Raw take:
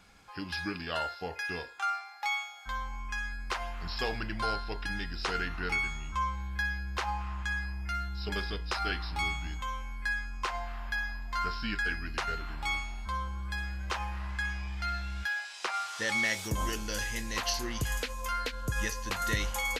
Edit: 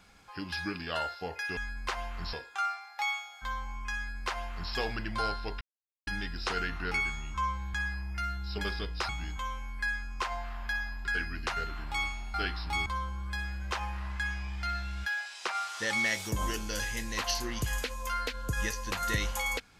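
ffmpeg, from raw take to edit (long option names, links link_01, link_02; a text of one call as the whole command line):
ffmpeg -i in.wav -filter_complex "[0:a]asplit=9[link_01][link_02][link_03][link_04][link_05][link_06][link_07][link_08][link_09];[link_01]atrim=end=1.572[link_10];[link_02]atrim=start=3.198:end=3.962[link_11];[link_03]atrim=start=1.568:end=4.85,asetpts=PTS-STARTPTS,afade=type=out:start_time=3.278:duration=0.004:curve=hsin,apad=pad_dur=0.46[link_12];[link_04]atrim=start=4.85:end=6.522,asetpts=PTS-STARTPTS,afade=type=in:duration=0.004:curve=hsin[link_13];[link_05]atrim=start=7.448:end=8.802[link_14];[link_06]atrim=start=9.318:end=11.282[link_15];[link_07]atrim=start=11.758:end=13.052[link_16];[link_08]atrim=start=8.798:end=9.322[link_17];[link_09]atrim=start=13.048[link_18];[link_10][link_11]acrossfade=duration=0.004:curve1=hsin:curve2=hsin[link_19];[link_12][link_13]concat=n=2:v=0:a=1[link_20];[link_19][link_20]acrossfade=duration=0.004:curve1=hsin:curve2=hsin[link_21];[link_21][link_14]acrossfade=duration=0.004:curve1=hsin:curve2=hsin[link_22];[link_22][link_15]acrossfade=duration=0.004:curve1=hsin:curve2=hsin[link_23];[link_23][link_16]acrossfade=duration=0.004:curve1=hsin:curve2=hsin[link_24];[link_24][link_17]acrossfade=duration=0.004:curve1=hsin:curve2=hsin[link_25];[link_25][link_18]acrossfade=duration=0.004:curve1=hsin:curve2=hsin" out.wav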